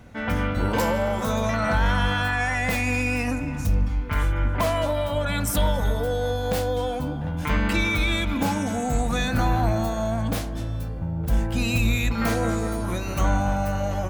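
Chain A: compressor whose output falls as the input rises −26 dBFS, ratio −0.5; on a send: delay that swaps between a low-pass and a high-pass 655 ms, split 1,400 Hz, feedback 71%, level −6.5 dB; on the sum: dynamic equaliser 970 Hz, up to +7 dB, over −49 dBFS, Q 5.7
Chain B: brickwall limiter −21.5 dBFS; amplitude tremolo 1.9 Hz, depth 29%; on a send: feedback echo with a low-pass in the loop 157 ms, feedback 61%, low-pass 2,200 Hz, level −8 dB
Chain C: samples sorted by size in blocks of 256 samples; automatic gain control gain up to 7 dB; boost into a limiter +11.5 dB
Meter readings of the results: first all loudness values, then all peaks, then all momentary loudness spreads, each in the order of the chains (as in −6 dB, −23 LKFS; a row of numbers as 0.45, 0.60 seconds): −26.5, −30.5, −9.5 LKFS; −10.5, −18.5, −1.0 dBFS; 4, 2, 2 LU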